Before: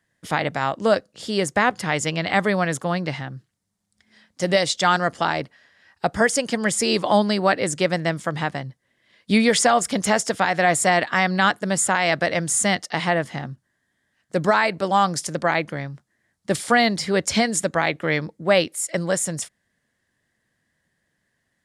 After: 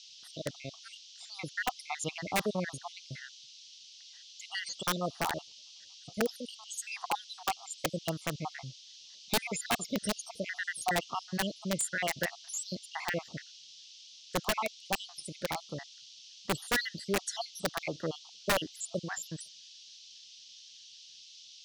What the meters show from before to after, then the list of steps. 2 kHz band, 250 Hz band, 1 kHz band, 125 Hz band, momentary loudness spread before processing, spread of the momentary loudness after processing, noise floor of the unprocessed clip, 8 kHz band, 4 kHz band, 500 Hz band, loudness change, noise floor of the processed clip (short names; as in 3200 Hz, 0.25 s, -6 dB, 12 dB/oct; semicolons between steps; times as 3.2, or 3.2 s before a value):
-14.0 dB, -15.5 dB, -15.5 dB, -14.0 dB, 10 LU, 18 LU, -74 dBFS, -12.5 dB, -10.5 dB, -16.0 dB, -14.0 dB, -54 dBFS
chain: random spectral dropouts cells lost 75%; wrapped overs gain 12.5 dB; band noise 2900–6100 Hz -44 dBFS; gain -9 dB